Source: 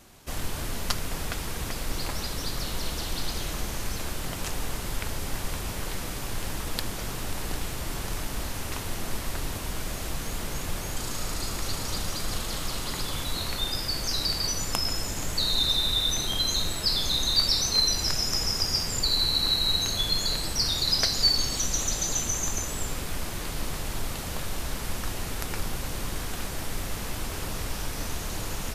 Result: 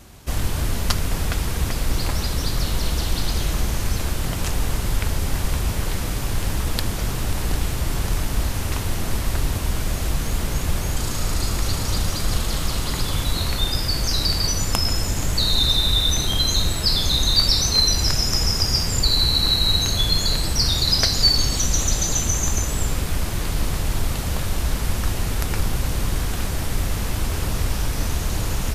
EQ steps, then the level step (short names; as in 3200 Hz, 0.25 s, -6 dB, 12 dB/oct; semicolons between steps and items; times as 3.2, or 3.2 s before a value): bell 60 Hz +8.5 dB 2.9 oct; +5.0 dB